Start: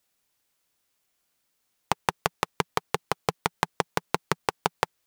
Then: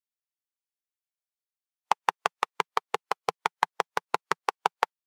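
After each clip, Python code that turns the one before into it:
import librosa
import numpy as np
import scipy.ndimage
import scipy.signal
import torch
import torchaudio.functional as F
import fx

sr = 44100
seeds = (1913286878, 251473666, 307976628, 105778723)

y = fx.highpass(x, sr, hz=780.0, slope=6)
y = fx.spectral_expand(y, sr, expansion=1.5)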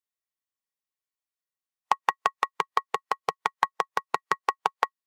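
y = fx.small_body(x, sr, hz=(1100.0, 1900.0), ring_ms=65, db=12)
y = y * 10.0 ** (-1.5 / 20.0)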